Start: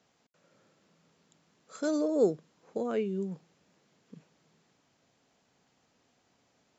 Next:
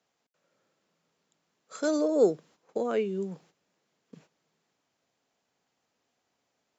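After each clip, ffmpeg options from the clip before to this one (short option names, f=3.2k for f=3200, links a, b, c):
-filter_complex "[0:a]agate=range=-11dB:threshold=-57dB:ratio=16:detection=peak,acrossover=split=320[a][b];[b]acontrast=61[c];[a][c]amix=inputs=2:normalize=0,volume=-2dB"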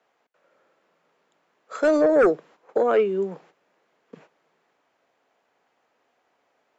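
-filter_complex "[0:a]acrossover=split=330 2600:gain=0.2 1 0.178[a][b][c];[a][b][c]amix=inputs=3:normalize=0,aeval=exprs='0.188*sin(PI/2*2*val(0)/0.188)':c=same,volume=2dB"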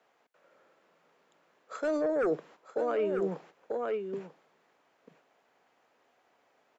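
-af "aecho=1:1:942:0.237,areverse,acompressor=threshold=-27dB:ratio=8,areverse"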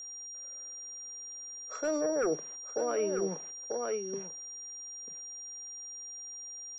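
-af "aeval=exprs='val(0)+0.01*sin(2*PI*5700*n/s)':c=same,volume=-1.5dB"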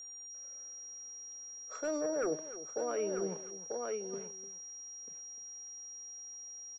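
-af "aecho=1:1:299:0.188,volume=-4dB"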